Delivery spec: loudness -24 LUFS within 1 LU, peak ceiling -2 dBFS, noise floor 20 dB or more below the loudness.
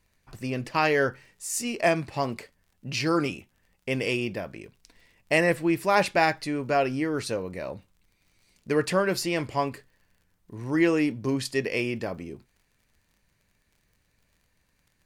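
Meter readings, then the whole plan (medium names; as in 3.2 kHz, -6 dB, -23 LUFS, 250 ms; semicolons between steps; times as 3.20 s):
tick rate 42 per s; loudness -26.5 LUFS; peak level -7.5 dBFS; loudness target -24.0 LUFS
-> de-click; trim +2.5 dB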